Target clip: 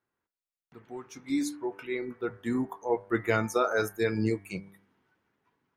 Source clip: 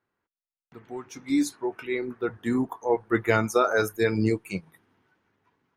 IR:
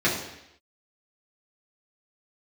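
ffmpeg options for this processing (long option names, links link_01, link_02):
-af "bandreject=frequency=98.21:width_type=h:width=4,bandreject=frequency=196.42:width_type=h:width=4,bandreject=frequency=294.63:width_type=h:width=4,bandreject=frequency=392.84:width_type=h:width=4,bandreject=frequency=491.05:width_type=h:width=4,bandreject=frequency=589.26:width_type=h:width=4,bandreject=frequency=687.47:width_type=h:width=4,bandreject=frequency=785.68:width_type=h:width=4,bandreject=frequency=883.89:width_type=h:width=4,bandreject=frequency=982.1:width_type=h:width=4,bandreject=frequency=1080.31:width_type=h:width=4,bandreject=frequency=1178.52:width_type=h:width=4,bandreject=frequency=1276.73:width_type=h:width=4,bandreject=frequency=1374.94:width_type=h:width=4,bandreject=frequency=1473.15:width_type=h:width=4,bandreject=frequency=1571.36:width_type=h:width=4,bandreject=frequency=1669.57:width_type=h:width=4,bandreject=frequency=1767.78:width_type=h:width=4,bandreject=frequency=1865.99:width_type=h:width=4,bandreject=frequency=1964.2:width_type=h:width=4,bandreject=frequency=2062.41:width_type=h:width=4,bandreject=frequency=2160.62:width_type=h:width=4,bandreject=frequency=2258.83:width_type=h:width=4,volume=-4dB"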